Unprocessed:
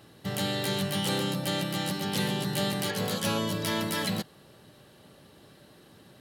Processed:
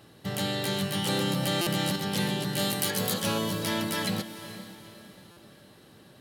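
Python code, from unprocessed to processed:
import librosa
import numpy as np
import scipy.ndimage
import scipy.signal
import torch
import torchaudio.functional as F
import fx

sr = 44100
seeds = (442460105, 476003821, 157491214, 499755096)

y = fx.high_shelf(x, sr, hz=7000.0, db=11.0, at=(2.59, 3.14))
y = fx.echo_diffused(y, sr, ms=451, feedback_pct=41, wet_db=-12.5)
y = fx.buffer_glitch(y, sr, at_s=(1.61, 5.31), block=256, repeats=9)
y = fx.env_flatten(y, sr, amount_pct=70, at=(1.09, 1.96))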